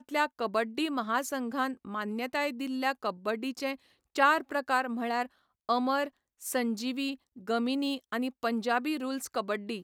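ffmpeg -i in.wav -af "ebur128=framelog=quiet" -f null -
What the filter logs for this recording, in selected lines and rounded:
Integrated loudness:
  I:         -31.3 LUFS
  Threshold: -41.4 LUFS
Loudness range:
  LRA:         2.3 LU
  Threshold: -51.3 LUFS
  LRA low:   -32.4 LUFS
  LRA high:  -30.1 LUFS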